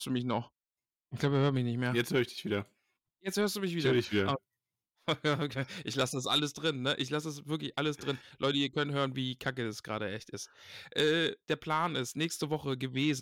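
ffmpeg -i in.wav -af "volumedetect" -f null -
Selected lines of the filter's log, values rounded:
mean_volume: -33.3 dB
max_volume: -19.4 dB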